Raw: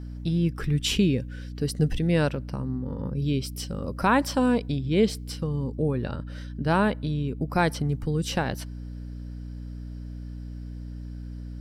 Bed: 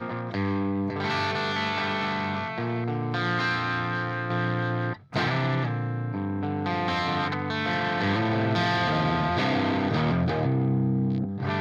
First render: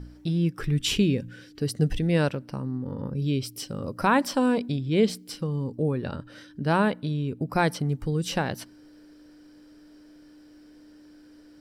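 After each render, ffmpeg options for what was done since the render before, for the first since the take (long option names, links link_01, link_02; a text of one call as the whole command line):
ffmpeg -i in.wav -af "bandreject=frequency=60:width_type=h:width=4,bandreject=frequency=120:width_type=h:width=4,bandreject=frequency=180:width_type=h:width=4,bandreject=frequency=240:width_type=h:width=4" out.wav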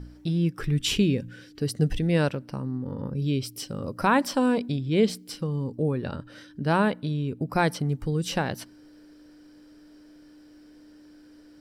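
ffmpeg -i in.wav -af anull out.wav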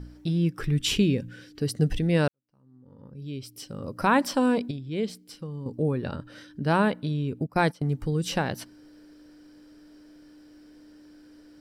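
ffmpeg -i in.wav -filter_complex "[0:a]asplit=3[link_01][link_02][link_03];[link_01]afade=type=out:start_time=7.42:duration=0.02[link_04];[link_02]agate=range=-17dB:threshold=-30dB:ratio=16:release=100:detection=peak,afade=type=in:start_time=7.42:duration=0.02,afade=type=out:start_time=7.89:duration=0.02[link_05];[link_03]afade=type=in:start_time=7.89:duration=0.02[link_06];[link_04][link_05][link_06]amix=inputs=3:normalize=0,asplit=4[link_07][link_08][link_09][link_10];[link_07]atrim=end=2.28,asetpts=PTS-STARTPTS,afade=type=out:start_time=2.276:duration=0.004:curve=hsin[link_11];[link_08]atrim=start=2.28:end=4.712,asetpts=PTS-STARTPTS,afade=type=in:duration=1.84:curve=qua[link_12];[link_09]atrim=start=4.708:end=5.662,asetpts=PTS-STARTPTS,volume=-7.5dB[link_13];[link_10]atrim=start=5.658[link_14];[link_11][link_12]concat=n=2:v=0:a=1[link_15];[link_15][link_13]acrossfade=duration=0.004:curve1=hsin:curve2=hsin[link_16];[link_16][link_14]acrossfade=duration=0.004:curve1=hsin:curve2=hsin" out.wav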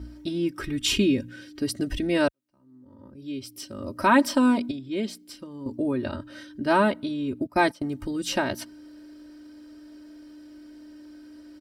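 ffmpeg -i in.wav -af "highpass=44,aecho=1:1:3.2:0.91" out.wav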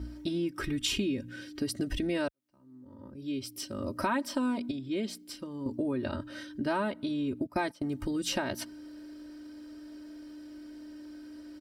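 ffmpeg -i in.wav -af "acompressor=threshold=-29dB:ratio=4" out.wav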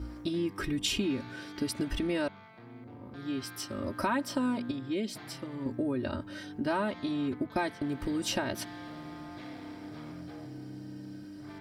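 ffmpeg -i in.wav -i bed.wav -filter_complex "[1:a]volume=-22.5dB[link_01];[0:a][link_01]amix=inputs=2:normalize=0" out.wav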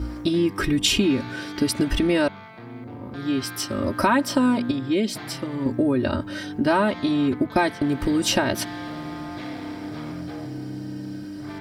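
ffmpeg -i in.wav -af "volume=10.5dB" out.wav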